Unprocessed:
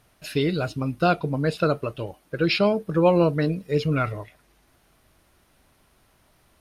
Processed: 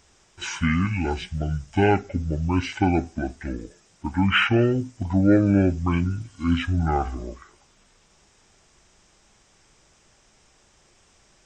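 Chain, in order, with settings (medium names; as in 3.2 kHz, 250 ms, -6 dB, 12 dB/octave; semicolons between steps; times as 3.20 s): treble shelf 3.3 kHz +8 dB; speed mistake 78 rpm record played at 45 rpm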